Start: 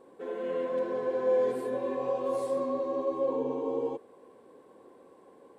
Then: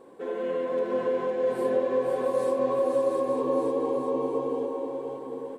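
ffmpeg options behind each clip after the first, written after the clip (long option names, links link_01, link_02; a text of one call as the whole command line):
ffmpeg -i in.wav -filter_complex "[0:a]asplit=2[link_01][link_02];[link_02]aecho=0:1:694:0.668[link_03];[link_01][link_03]amix=inputs=2:normalize=0,acompressor=threshold=-29dB:ratio=6,asplit=2[link_04][link_05];[link_05]aecho=0:1:510|892.5|1179|1395|1556:0.631|0.398|0.251|0.158|0.1[link_06];[link_04][link_06]amix=inputs=2:normalize=0,volume=4.5dB" out.wav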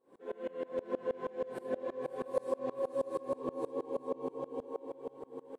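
ffmpeg -i in.wav -af "aeval=exprs='val(0)*pow(10,-26*if(lt(mod(-6.3*n/s,1),2*abs(-6.3)/1000),1-mod(-6.3*n/s,1)/(2*abs(-6.3)/1000),(mod(-6.3*n/s,1)-2*abs(-6.3)/1000)/(1-2*abs(-6.3)/1000))/20)':channel_layout=same,volume=-3.5dB" out.wav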